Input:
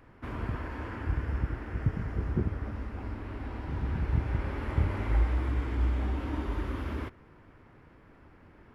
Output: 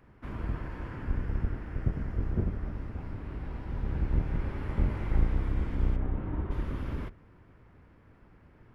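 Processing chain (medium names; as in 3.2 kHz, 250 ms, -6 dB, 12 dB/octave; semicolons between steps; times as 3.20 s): octave divider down 1 oct, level +4 dB; 5.96–6.51 s: low-pass 1.8 kHz 12 dB/octave; trim -4.5 dB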